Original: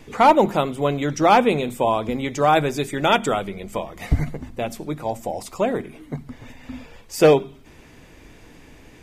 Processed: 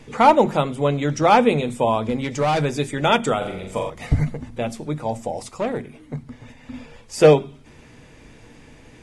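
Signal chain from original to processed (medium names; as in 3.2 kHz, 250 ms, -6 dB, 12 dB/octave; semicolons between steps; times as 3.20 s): 2.05–2.65 s: hard clipper -17 dBFS, distortion -17 dB; 3.37–3.90 s: flutter echo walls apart 7.3 m, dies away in 0.64 s; 5.49–6.74 s: valve stage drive 17 dB, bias 0.55; on a send at -15 dB: reverberation RT60 0.20 s, pre-delay 3 ms; on the sum: AAC 64 kbps 24 kHz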